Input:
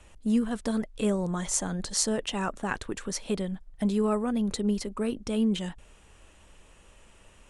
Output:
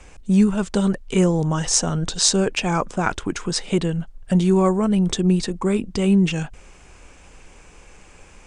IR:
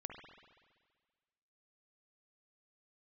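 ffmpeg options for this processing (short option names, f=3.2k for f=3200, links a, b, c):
-af "asetrate=39028,aresample=44100,volume=9dB"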